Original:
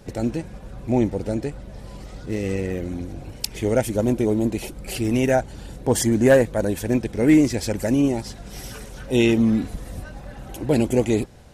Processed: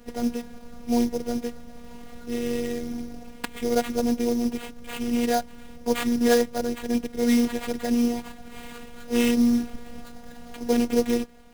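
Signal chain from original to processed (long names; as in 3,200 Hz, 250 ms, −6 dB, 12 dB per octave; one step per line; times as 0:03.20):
in parallel at −1 dB: speech leveller within 3 dB 2 s
on the sum: sample-rate reduction 5,600 Hz, jitter 20%
phases set to zero 239 Hz
level −7.5 dB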